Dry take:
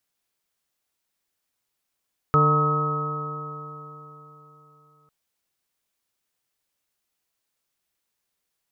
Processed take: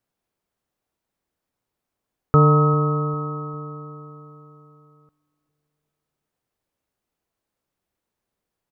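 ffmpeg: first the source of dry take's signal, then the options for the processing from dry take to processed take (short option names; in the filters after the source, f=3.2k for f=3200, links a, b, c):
-f lavfi -i "aevalsrc='0.119*pow(10,-3*t/3.7)*sin(2*PI*148.19*t)+0.0335*pow(10,-3*t/3.7)*sin(2*PI*297.54*t)+0.0708*pow(10,-3*t/3.7)*sin(2*PI*449.16*t)+0.0224*pow(10,-3*t/3.7)*sin(2*PI*604.19*t)+0.0133*pow(10,-3*t/3.7)*sin(2*PI*763.67*t)+0.0224*pow(10,-3*t/3.7)*sin(2*PI*928.63*t)+0.0282*pow(10,-3*t/3.7)*sin(2*PI*1100.02*t)+0.158*pow(10,-3*t/3.7)*sin(2*PI*1278.72*t)':d=2.75:s=44100"
-filter_complex "[0:a]tiltshelf=f=1.4k:g=8,asplit=2[a][b];[b]adelay=400,lowpass=f=2k:p=1,volume=-21.5dB,asplit=2[c][d];[d]adelay=400,lowpass=f=2k:p=1,volume=0.46,asplit=2[e][f];[f]adelay=400,lowpass=f=2k:p=1,volume=0.46[g];[a][c][e][g]amix=inputs=4:normalize=0"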